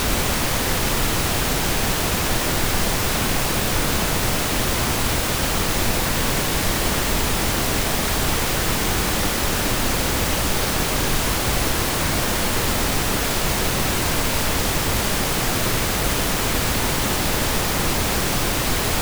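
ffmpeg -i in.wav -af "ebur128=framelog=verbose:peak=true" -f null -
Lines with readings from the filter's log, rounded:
Integrated loudness:
  I:         -20.3 LUFS
  Threshold: -30.3 LUFS
Loudness range:
  LRA:         0.1 LU
  Threshold: -40.3 LUFS
  LRA low:   -20.3 LUFS
  LRA high:  -20.2 LUFS
True peak:
  Peak:       -6.5 dBFS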